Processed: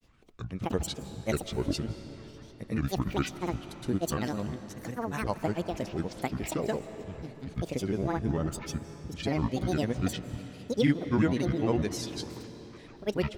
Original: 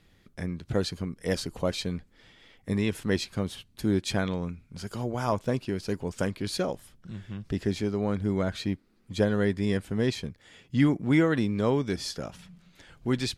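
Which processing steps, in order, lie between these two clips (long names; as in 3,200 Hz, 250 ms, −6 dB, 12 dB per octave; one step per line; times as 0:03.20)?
granular cloud, pitch spread up and down by 12 semitones
comb and all-pass reverb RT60 4 s, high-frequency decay 0.75×, pre-delay 120 ms, DRR 11.5 dB
level −1.5 dB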